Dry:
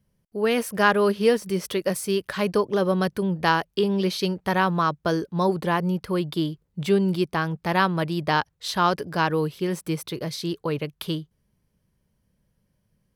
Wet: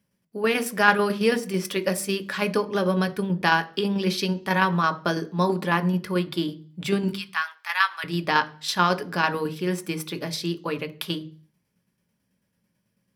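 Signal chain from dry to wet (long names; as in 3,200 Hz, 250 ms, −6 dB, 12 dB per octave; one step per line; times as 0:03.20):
0:07.08–0:08.04: high-pass filter 1,100 Hz 24 dB per octave
shaped tremolo saw down 9.1 Hz, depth 50%
convolution reverb RT60 0.40 s, pre-delay 3 ms, DRR 8.5 dB
level +3 dB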